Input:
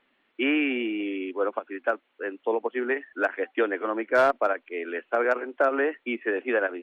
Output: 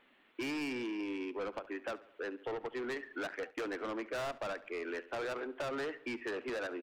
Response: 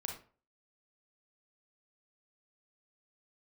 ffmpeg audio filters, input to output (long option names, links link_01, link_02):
-filter_complex "[0:a]asoftclip=type=tanh:threshold=-29dB,acompressor=threshold=-43dB:ratio=2.5,asplit=2[link_01][link_02];[link_02]adelay=70,lowpass=frequency=4500:poles=1,volume=-17.5dB,asplit=2[link_03][link_04];[link_04]adelay=70,lowpass=frequency=4500:poles=1,volume=0.55,asplit=2[link_05][link_06];[link_06]adelay=70,lowpass=frequency=4500:poles=1,volume=0.55,asplit=2[link_07][link_08];[link_08]adelay=70,lowpass=frequency=4500:poles=1,volume=0.55,asplit=2[link_09][link_10];[link_10]adelay=70,lowpass=frequency=4500:poles=1,volume=0.55[link_11];[link_01][link_03][link_05][link_07][link_09][link_11]amix=inputs=6:normalize=0,asettb=1/sr,asplit=3[link_12][link_13][link_14];[link_12]atrim=end=3.294[link_15];[link_13]atrim=start=3.29:end=4.53,asetpts=PTS-STARTPTS,afade=type=in:duration=0.004:curve=qsin,afade=type=out:start_time=1.236:duration=0.004:curve=qsin,agate=range=-33dB:threshold=-45dB:ratio=3:detection=peak[link_16];[link_14]atrim=start=4.526[link_17];[link_15][link_16]acrossfade=duration=0.004:curve1=hsin:curve2=qsin[link_18];[link_18][link_17]acrossfade=duration=0.004:curve1=qsin:curve2=hsin,volume=2dB"